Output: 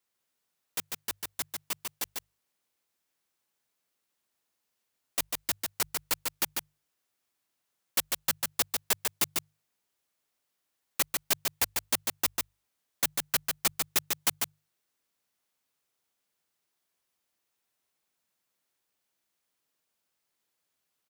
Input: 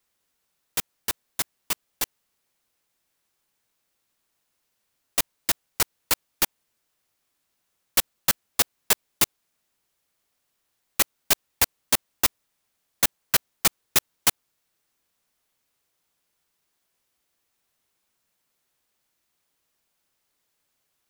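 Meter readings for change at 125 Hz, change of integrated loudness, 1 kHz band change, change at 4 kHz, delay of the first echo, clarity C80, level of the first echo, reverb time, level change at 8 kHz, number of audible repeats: −8.5 dB, −6.0 dB, −5.5 dB, −5.5 dB, 146 ms, no reverb audible, −4.0 dB, no reverb audible, −5.5 dB, 1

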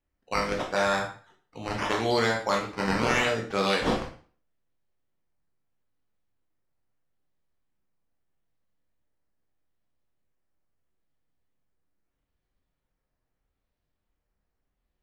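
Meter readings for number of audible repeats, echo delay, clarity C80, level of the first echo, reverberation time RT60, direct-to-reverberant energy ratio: no echo audible, no echo audible, 12.5 dB, no echo audible, 0.40 s, 0.0 dB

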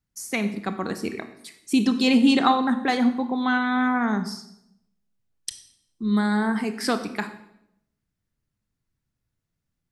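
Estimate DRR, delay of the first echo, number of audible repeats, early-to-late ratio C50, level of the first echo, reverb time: 9.0 dB, no echo audible, no echo audible, 11.5 dB, no echo audible, 0.80 s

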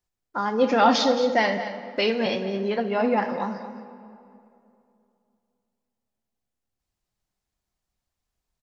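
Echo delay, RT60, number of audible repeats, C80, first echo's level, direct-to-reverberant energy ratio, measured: 221 ms, 2.7 s, 1, 9.5 dB, −12.5 dB, 8.0 dB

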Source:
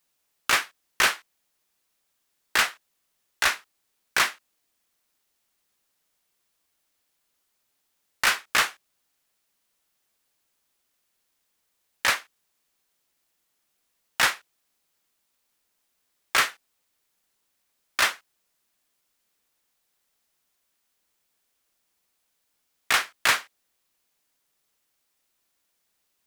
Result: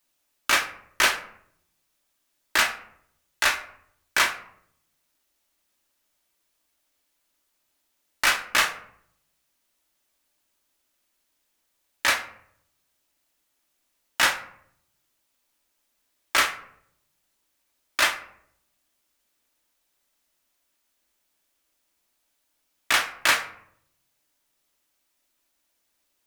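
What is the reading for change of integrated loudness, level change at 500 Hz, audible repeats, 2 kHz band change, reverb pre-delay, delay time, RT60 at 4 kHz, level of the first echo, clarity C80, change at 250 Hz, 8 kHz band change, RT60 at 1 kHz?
+1.0 dB, +2.0 dB, no echo audible, +1.0 dB, 3 ms, no echo audible, 0.35 s, no echo audible, 15.0 dB, +2.5 dB, +1.0 dB, 0.65 s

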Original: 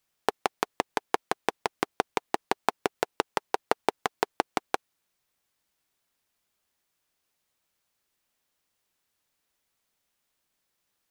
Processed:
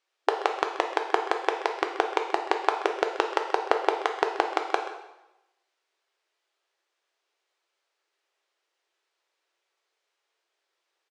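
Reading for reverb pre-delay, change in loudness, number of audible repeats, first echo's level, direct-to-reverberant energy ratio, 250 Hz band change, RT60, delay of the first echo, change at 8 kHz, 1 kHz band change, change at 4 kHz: 4 ms, +3.5 dB, 1, −15.0 dB, 3.5 dB, +0.5 dB, 0.95 s, 131 ms, −4.5 dB, +4.0 dB, +1.5 dB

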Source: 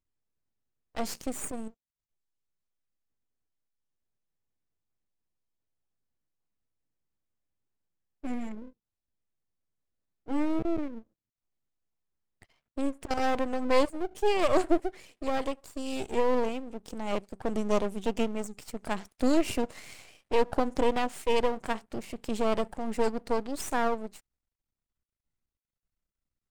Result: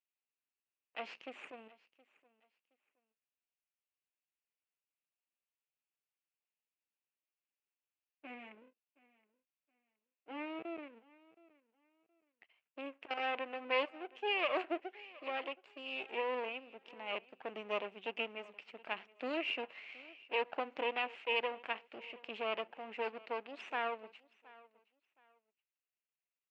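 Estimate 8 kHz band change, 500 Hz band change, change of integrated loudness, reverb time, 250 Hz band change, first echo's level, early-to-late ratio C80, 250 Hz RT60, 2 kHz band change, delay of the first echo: below −30 dB, −11.0 dB, −9.0 dB, no reverb audible, −18.0 dB, −22.0 dB, no reverb audible, no reverb audible, −1.0 dB, 720 ms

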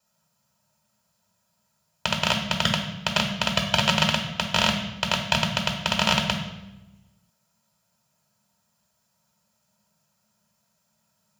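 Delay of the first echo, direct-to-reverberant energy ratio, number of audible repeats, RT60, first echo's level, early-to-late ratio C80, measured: no echo audible, −1.5 dB, no echo audible, 0.95 s, no echo audible, 9.0 dB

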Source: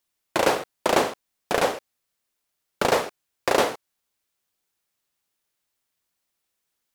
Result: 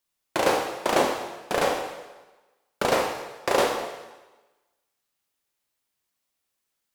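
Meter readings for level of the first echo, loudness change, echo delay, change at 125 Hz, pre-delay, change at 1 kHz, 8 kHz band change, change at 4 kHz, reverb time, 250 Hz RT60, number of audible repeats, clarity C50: no echo audible, −1.5 dB, no echo audible, −1.5 dB, 17 ms, −0.5 dB, −1.0 dB, −1.0 dB, 1.2 s, 1.1 s, no echo audible, 4.5 dB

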